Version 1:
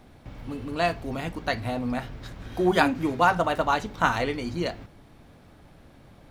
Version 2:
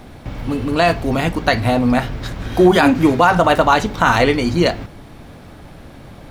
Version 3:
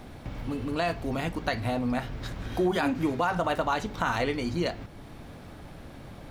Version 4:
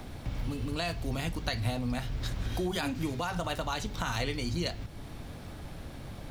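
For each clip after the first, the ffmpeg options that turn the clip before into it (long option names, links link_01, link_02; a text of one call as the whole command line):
ffmpeg -i in.wav -af "alimiter=level_in=14.5dB:limit=-1dB:release=50:level=0:latency=1,volume=-1dB" out.wav
ffmpeg -i in.wav -af "acompressor=threshold=-32dB:ratio=1.5,volume=-6dB" out.wav
ffmpeg -i in.wav -filter_complex "[0:a]acrossover=split=130|3000[link_01][link_02][link_03];[link_02]acompressor=threshold=-58dB:ratio=1.5[link_04];[link_01][link_04][link_03]amix=inputs=3:normalize=0,volume=4dB" out.wav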